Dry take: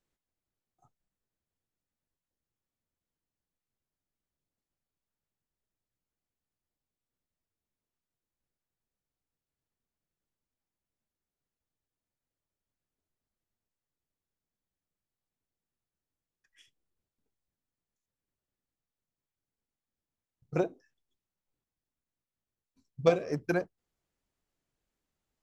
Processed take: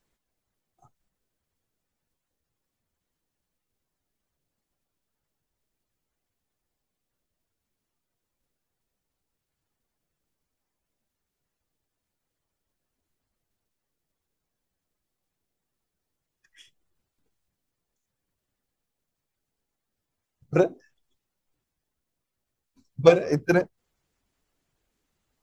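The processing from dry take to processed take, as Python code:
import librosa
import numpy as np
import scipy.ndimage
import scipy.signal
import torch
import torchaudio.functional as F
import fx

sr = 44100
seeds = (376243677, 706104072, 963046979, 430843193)

y = fx.spec_quant(x, sr, step_db=15)
y = F.gain(torch.from_numpy(y), 9.0).numpy()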